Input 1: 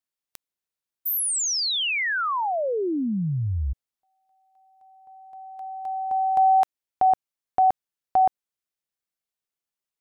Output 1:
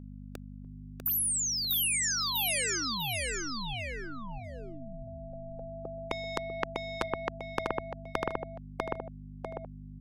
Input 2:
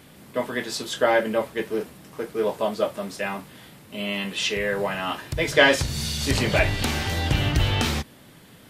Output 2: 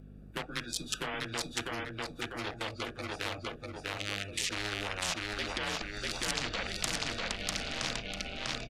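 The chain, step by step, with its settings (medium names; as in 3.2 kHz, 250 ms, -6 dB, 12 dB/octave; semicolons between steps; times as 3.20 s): local Wiener filter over 41 samples; low-pass that closes with the level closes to 2.5 kHz, closed at -17 dBFS; frequency shift -100 Hz; treble shelf 8.6 kHz +5.5 dB; compression 1.5:1, threshold -30 dBFS; peak limiter -21.5 dBFS; spectral noise reduction 17 dB; hum 50 Hz, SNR 26 dB; on a send: feedback delay 647 ms, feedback 23%, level -3.5 dB; on the sum: spectrum-flattening compressor 4:1; trim +6.5 dB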